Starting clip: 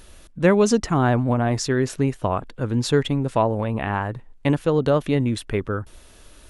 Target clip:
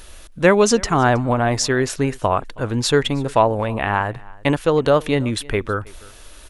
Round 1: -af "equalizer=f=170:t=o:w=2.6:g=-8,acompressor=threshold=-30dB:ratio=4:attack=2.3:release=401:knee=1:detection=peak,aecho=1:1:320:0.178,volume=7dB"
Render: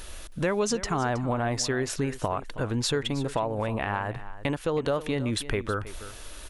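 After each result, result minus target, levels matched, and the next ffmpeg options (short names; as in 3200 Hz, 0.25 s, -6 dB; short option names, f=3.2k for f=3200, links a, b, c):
compressor: peak gain reduction +14.5 dB; echo-to-direct +8.5 dB
-af "equalizer=f=170:t=o:w=2.6:g=-8,aecho=1:1:320:0.178,volume=7dB"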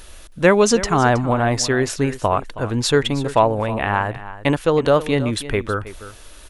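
echo-to-direct +8.5 dB
-af "equalizer=f=170:t=o:w=2.6:g=-8,aecho=1:1:320:0.0668,volume=7dB"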